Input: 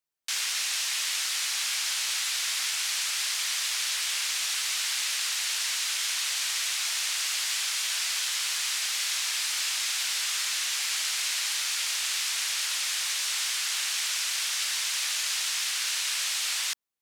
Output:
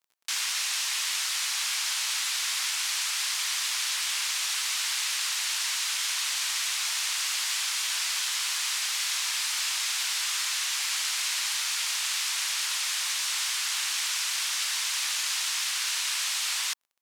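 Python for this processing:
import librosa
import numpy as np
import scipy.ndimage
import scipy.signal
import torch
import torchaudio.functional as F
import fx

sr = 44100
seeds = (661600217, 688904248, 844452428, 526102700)

y = fx.peak_eq(x, sr, hz=990.0, db=5.5, octaves=0.72)
y = fx.dmg_crackle(y, sr, seeds[0], per_s=29.0, level_db=-49.0)
y = fx.low_shelf(y, sr, hz=350.0, db=-11.5)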